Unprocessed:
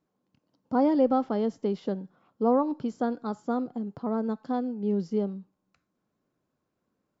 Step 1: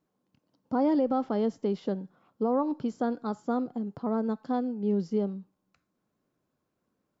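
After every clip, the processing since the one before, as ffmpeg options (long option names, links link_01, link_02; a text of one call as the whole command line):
ffmpeg -i in.wav -af "alimiter=limit=-18dB:level=0:latency=1:release=67" out.wav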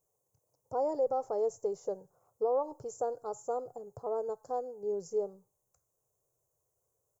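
ffmpeg -i in.wav -af "firequalizer=gain_entry='entry(120,0);entry(220,-29);entry(430,0);entry(840,-3);entry(1600,-17);entry(3200,-29);entry(6400,11)':delay=0.05:min_phase=1" out.wav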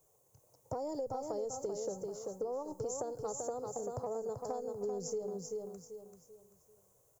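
ffmpeg -i in.wav -filter_complex "[0:a]acrossover=split=230|3000[link_01][link_02][link_03];[link_02]acompressor=threshold=-45dB:ratio=6[link_04];[link_01][link_04][link_03]amix=inputs=3:normalize=0,asplit=2[link_05][link_06];[link_06]aecho=0:1:388|776|1164|1552:0.501|0.17|0.0579|0.0197[link_07];[link_05][link_07]amix=inputs=2:normalize=0,acompressor=threshold=-45dB:ratio=4,volume=10dB" out.wav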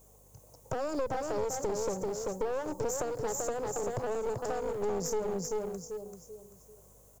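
ffmpeg -i in.wav -filter_complex "[0:a]asplit=2[link_01][link_02];[link_02]alimiter=level_in=11.5dB:limit=-24dB:level=0:latency=1:release=19,volume=-11.5dB,volume=-3dB[link_03];[link_01][link_03]amix=inputs=2:normalize=0,aeval=exprs='clip(val(0),-1,0.00891)':channel_layout=same,aeval=exprs='val(0)+0.000447*(sin(2*PI*50*n/s)+sin(2*PI*2*50*n/s)/2+sin(2*PI*3*50*n/s)/3+sin(2*PI*4*50*n/s)/4+sin(2*PI*5*50*n/s)/5)':channel_layout=same,volume=5dB" out.wav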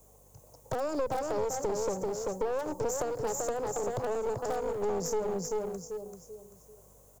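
ffmpeg -i in.wav -filter_complex "[0:a]acrossover=split=170|1000|4700[link_01][link_02][link_03][link_04];[link_02]crystalizer=i=9.5:c=0[link_05];[link_03]aeval=exprs='(mod(66.8*val(0)+1,2)-1)/66.8':channel_layout=same[link_06];[link_01][link_05][link_06][link_04]amix=inputs=4:normalize=0" out.wav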